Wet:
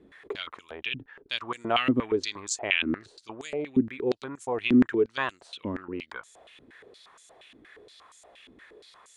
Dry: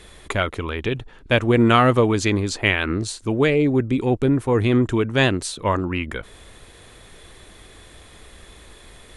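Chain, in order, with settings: dynamic bell 580 Hz, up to -5 dB, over -32 dBFS, Q 0.86; step-sequenced band-pass 8.5 Hz 270–7000 Hz; trim +4.5 dB

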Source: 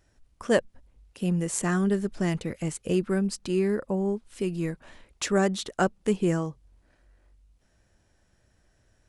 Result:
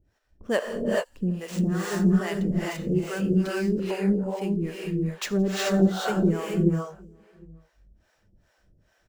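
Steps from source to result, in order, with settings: median filter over 5 samples; echo from a far wall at 130 m, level -26 dB; gated-style reverb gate 460 ms rising, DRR -3 dB; harmonic tremolo 2.4 Hz, depth 100%, crossover 450 Hz; on a send: feedback echo behind a high-pass 84 ms, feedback 69%, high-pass 5.1 kHz, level -23 dB; on the sum: trim +2 dB

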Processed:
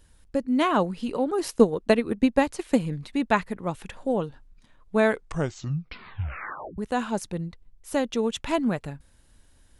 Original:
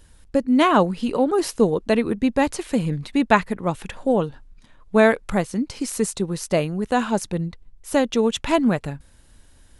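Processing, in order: 1.42–2.79 s: transient shaper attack +8 dB, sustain -3 dB; 5.05 s: tape stop 1.73 s; trim -6 dB

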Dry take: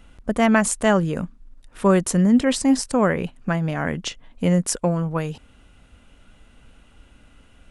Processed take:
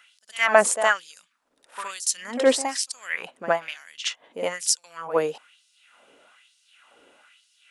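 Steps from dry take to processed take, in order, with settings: pre-echo 66 ms -13 dB; LFO high-pass sine 1.1 Hz 410–5000 Hz

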